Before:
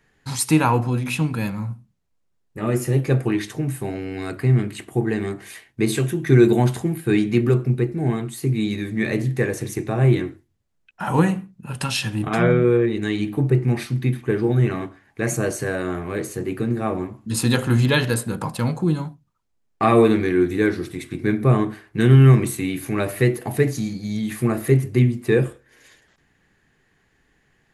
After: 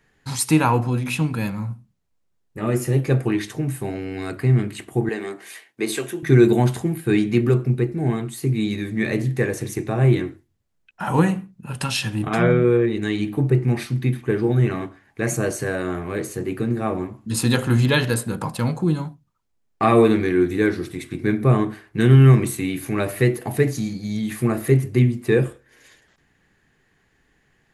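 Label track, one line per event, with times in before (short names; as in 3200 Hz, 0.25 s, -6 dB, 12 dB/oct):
5.090000	6.230000	HPF 350 Hz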